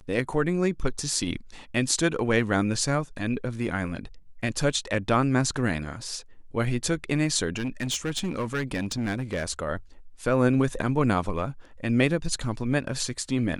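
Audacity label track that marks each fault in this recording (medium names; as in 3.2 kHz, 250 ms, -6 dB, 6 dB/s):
7.560000	9.440000	clipped -23.5 dBFS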